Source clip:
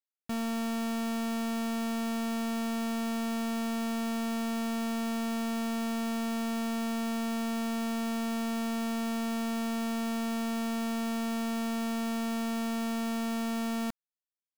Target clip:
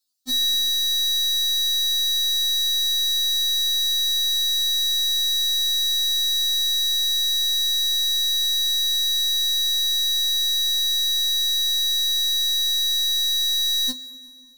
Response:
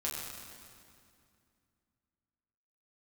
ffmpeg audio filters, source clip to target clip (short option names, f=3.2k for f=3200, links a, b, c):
-filter_complex "[0:a]highshelf=f=3.1k:t=q:w=3:g=11.5,asplit=2[a][b];[1:a]atrim=start_sample=2205[c];[b][c]afir=irnorm=-1:irlink=0,volume=-13dB[d];[a][d]amix=inputs=2:normalize=0,afftfilt=real='re*3.46*eq(mod(b,12),0)':imag='im*3.46*eq(mod(b,12),0)':win_size=2048:overlap=0.75,volume=7.5dB"